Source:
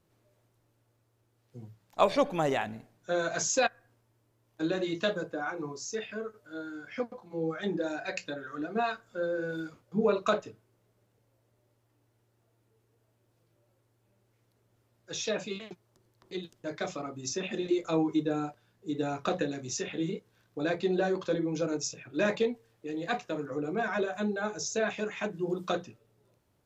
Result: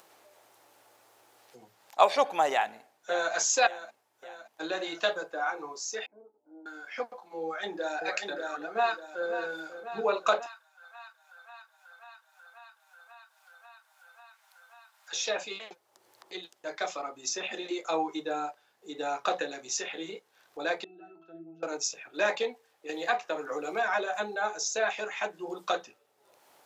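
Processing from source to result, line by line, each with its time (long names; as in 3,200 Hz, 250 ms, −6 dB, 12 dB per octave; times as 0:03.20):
0:02.51–0:03.33: delay throw 570 ms, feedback 60%, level −14 dB
0:06.06–0:06.66: formant resonators in series u
0:07.42–0:07.97: delay throw 590 ms, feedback 35%, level −4 dB
0:08.66–0:09.29: delay throw 540 ms, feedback 80%, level −11.5 dB
0:10.46–0:15.13: Butterworth high-pass 830 Hz
0:20.84–0:21.63: resonances in every octave E, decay 0.35 s
0:22.89–0:24.35: multiband upward and downward compressor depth 100%
whole clip: high-pass filter 620 Hz 12 dB per octave; parametric band 800 Hz +6.5 dB 0.28 octaves; upward compression, threshold −51 dBFS; level +3.5 dB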